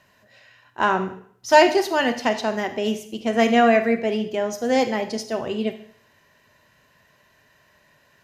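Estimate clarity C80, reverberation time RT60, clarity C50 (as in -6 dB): 14.5 dB, 0.55 s, 11.5 dB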